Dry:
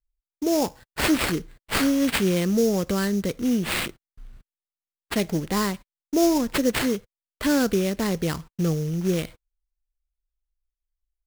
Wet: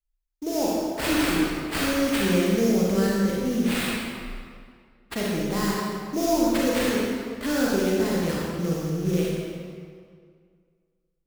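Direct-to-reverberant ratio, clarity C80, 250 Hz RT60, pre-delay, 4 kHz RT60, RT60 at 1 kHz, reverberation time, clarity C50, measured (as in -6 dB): -5.5 dB, -1.0 dB, 2.0 s, 32 ms, 1.5 s, 2.1 s, 2.1 s, -3.0 dB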